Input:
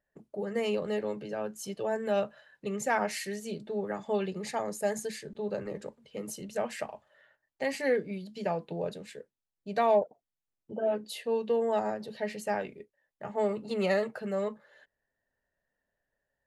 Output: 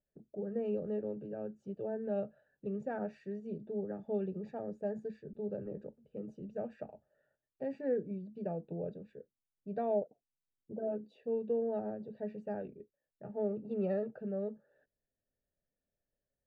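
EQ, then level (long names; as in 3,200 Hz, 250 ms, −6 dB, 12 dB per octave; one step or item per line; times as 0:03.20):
moving average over 42 samples
high-frequency loss of the air 110 metres
−2.0 dB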